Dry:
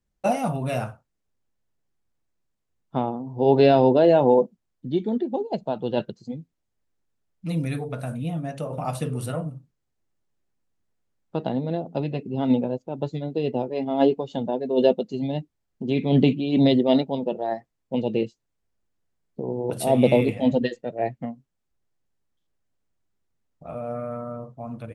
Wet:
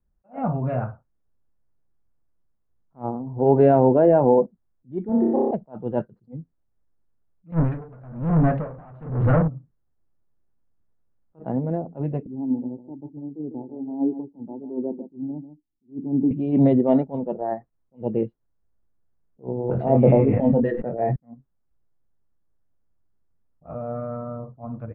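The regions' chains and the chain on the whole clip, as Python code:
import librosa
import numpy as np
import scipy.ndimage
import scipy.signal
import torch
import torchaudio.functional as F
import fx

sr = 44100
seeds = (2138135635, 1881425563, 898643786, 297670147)

y = fx.chain(x, sr, fx.highpass(hz=120.0, slope=12),
    fx.room_flutter(wall_m=5.2, rt60_s=1.5), at=(5.09, 5.51))
y = fx.chain(y, sr, fx.leveller(passes=5),
    fx.tremolo_db(hz=1.1, depth_db=28), at=(7.52, 9.48))
y = fx.chain(y, sr, fx.formant_cascade(vowel='u'),
    fx.echo_single(ms=147, db=-12.0), at=(12.26, 16.31))
y = fx.chain(y, sr, fx.high_shelf(hz=5500.0, db=-10.5),
    fx.doubler(ms=22.0, db=-7.0),
    fx.sustainer(db_per_s=47.0), at=(19.67, 21.16))
y = scipy.signal.sosfilt(scipy.signal.butter(4, 1600.0, 'lowpass', fs=sr, output='sos'), y)
y = fx.low_shelf(y, sr, hz=100.0, db=9.0)
y = fx.attack_slew(y, sr, db_per_s=280.0)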